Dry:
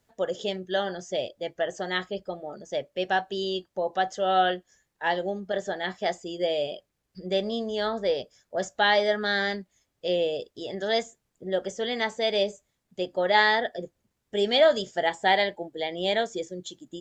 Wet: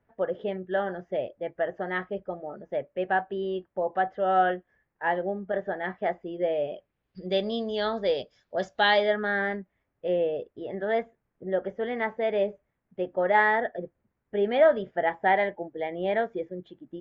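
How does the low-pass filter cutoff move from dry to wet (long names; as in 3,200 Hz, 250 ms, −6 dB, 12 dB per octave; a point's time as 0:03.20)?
low-pass filter 24 dB per octave
0:06.69 2,100 Hz
0:07.26 4,500 Hz
0:08.90 4,500 Hz
0:09.31 2,100 Hz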